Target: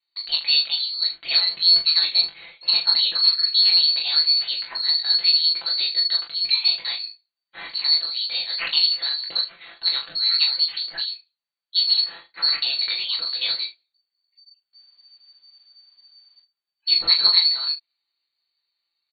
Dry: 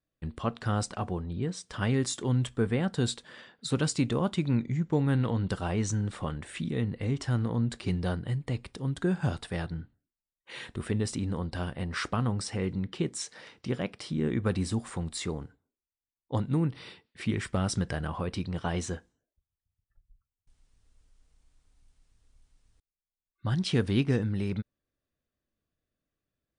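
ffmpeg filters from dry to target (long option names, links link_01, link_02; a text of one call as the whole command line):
ffmpeg -i in.wav -filter_complex "[0:a]lowpass=frequency=2800:width_type=q:width=0.5098,lowpass=frequency=2800:width_type=q:width=0.6013,lowpass=frequency=2800:width_type=q:width=0.9,lowpass=frequency=2800:width_type=q:width=2.563,afreqshift=-3300,asetrate=61299,aresample=44100,aecho=1:1:5.9:0.71,asplit=2[link_01][link_02];[link_02]aecho=0:1:21|39|75:0.631|0.562|0.2[link_03];[link_01][link_03]amix=inputs=2:normalize=0,volume=4dB" out.wav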